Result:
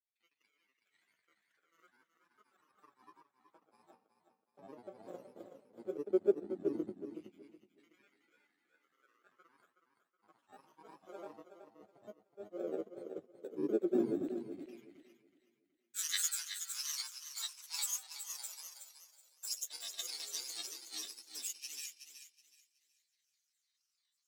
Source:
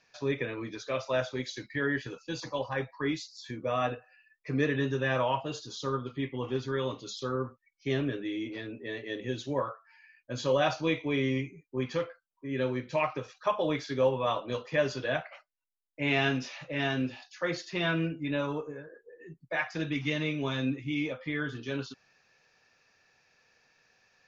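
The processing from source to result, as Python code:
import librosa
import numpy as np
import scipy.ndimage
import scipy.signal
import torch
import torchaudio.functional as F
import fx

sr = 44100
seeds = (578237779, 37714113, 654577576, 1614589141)

p1 = fx.bit_reversed(x, sr, seeds[0], block=64)
p2 = fx.fold_sine(p1, sr, drive_db=6, ceiling_db=-13.0)
p3 = p1 + (p2 * 10.0 ** (-10.0 / 20.0))
p4 = fx.filter_sweep_bandpass(p3, sr, from_hz=200.0, to_hz=6100.0, start_s=15.31, end_s=16.02, q=2.0)
p5 = fx.granulator(p4, sr, seeds[1], grain_ms=100.0, per_s=20.0, spray_ms=100.0, spread_st=7)
p6 = fx.filter_lfo_highpass(p5, sr, shape='saw_down', hz=0.14, low_hz=300.0, high_hz=2700.0, q=3.5)
p7 = p6 + fx.echo_feedback(p6, sr, ms=372, feedback_pct=38, wet_db=-6.0, dry=0)
p8 = fx.upward_expand(p7, sr, threshold_db=-57.0, expansion=1.5)
y = p8 * 10.0 ** (1.0 / 20.0)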